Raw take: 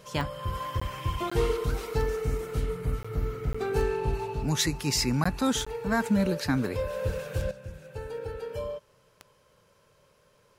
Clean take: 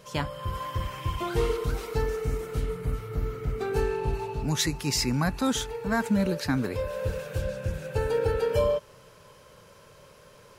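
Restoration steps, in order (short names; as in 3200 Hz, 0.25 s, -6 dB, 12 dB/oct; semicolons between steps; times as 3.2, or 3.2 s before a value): de-click; interpolate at 0.8/1.3/3.03/3.53/5.24/5.65, 15 ms; gain 0 dB, from 7.51 s +10.5 dB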